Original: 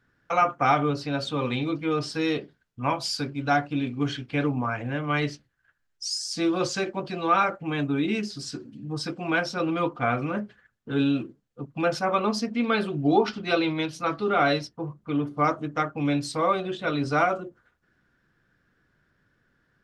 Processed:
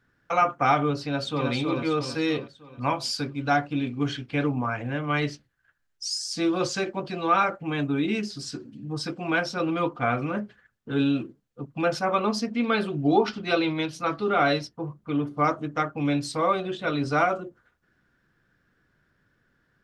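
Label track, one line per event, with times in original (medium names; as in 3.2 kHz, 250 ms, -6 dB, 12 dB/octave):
1.040000	1.510000	echo throw 320 ms, feedback 50%, level -3 dB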